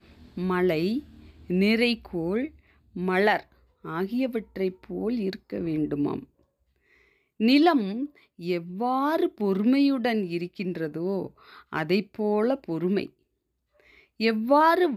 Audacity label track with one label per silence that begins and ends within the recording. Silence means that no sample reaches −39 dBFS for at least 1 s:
6.230000	7.400000	silence
13.060000	14.200000	silence